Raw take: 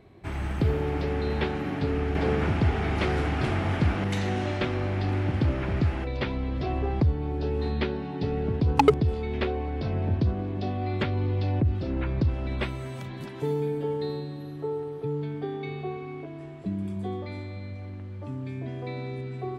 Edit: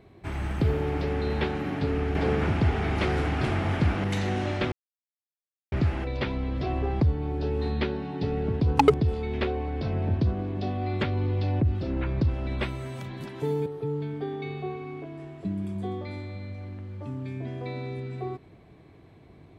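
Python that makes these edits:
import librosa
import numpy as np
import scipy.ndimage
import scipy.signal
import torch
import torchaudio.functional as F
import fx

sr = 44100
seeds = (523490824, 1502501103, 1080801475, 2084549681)

y = fx.edit(x, sr, fx.silence(start_s=4.72, length_s=1.0),
    fx.cut(start_s=13.66, length_s=1.21), tone=tone)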